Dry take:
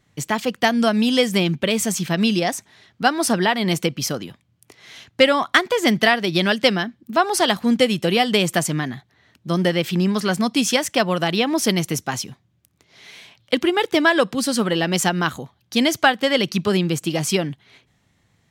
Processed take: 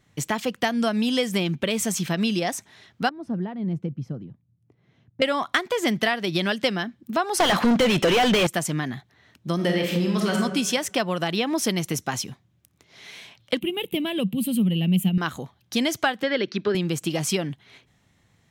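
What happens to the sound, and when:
3.09–5.22 band-pass 130 Hz, Q 1.3
7.4–8.47 overdrive pedal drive 34 dB, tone 2000 Hz, clips at -2.5 dBFS
9.55–10.36 reverb throw, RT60 0.96 s, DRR 0 dB
13.59–15.18 EQ curve 110 Hz 0 dB, 190 Hz +13 dB, 290 Hz -3 dB, 1600 Hz -22 dB, 2800 Hz +2 dB, 5500 Hz -25 dB, 12000 Hz +7 dB
16.23–16.75 speaker cabinet 150–4500 Hz, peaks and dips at 160 Hz -9 dB, 390 Hz +6 dB, 740 Hz -6 dB, 1100 Hz -5 dB, 1600 Hz +6 dB, 2900 Hz -6 dB
whole clip: notch 4600 Hz, Q 25; compressor 2:1, threshold -24 dBFS

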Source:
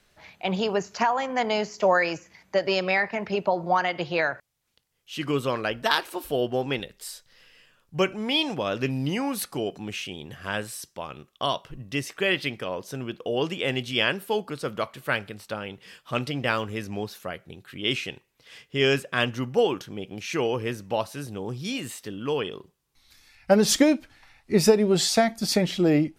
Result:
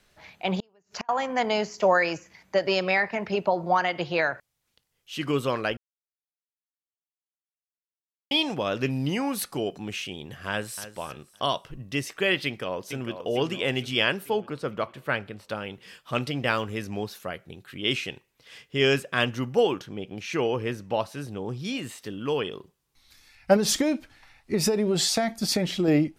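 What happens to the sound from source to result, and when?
0.58–1.09 flipped gate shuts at -20 dBFS, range -37 dB
5.77–8.31 mute
10.49–10.94 echo throw 0.28 s, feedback 30%, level -13 dB
12.45–13.17 echo throw 0.45 s, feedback 55%, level -9.5 dB
14.3–15.49 high shelf 4100 Hz -11.5 dB
19.76–22.02 high shelf 6100 Hz -7.5 dB
23.56–25.88 compressor, threshold -19 dBFS

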